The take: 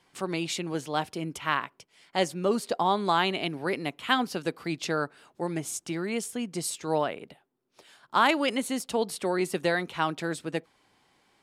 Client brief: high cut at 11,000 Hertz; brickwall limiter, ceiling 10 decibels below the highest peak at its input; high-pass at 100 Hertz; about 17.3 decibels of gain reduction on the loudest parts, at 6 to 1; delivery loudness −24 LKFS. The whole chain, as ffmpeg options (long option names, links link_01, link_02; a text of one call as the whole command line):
ffmpeg -i in.wav -af "highpass=100,lowpass=11000,acompressor=threshold=-37dB:ratio=6,volume=19dB,alimiter=limit=-12dB:level=0:latency=1" out.wav